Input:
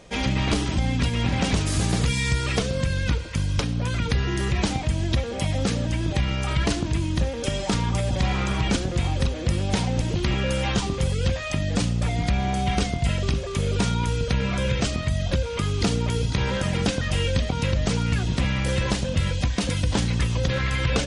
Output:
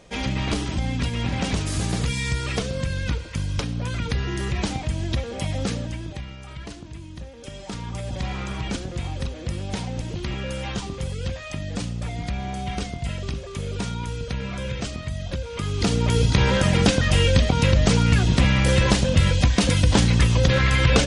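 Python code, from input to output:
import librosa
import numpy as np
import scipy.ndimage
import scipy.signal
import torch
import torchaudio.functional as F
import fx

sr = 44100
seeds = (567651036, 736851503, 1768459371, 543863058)

y = fx.gain(x, sr, db=fx.line((5.72, -2.0), (6.37, -14.0), (7.28, -14.0), (8.15, -5.5), (15.41, -5.5), (16.2, 5.5)))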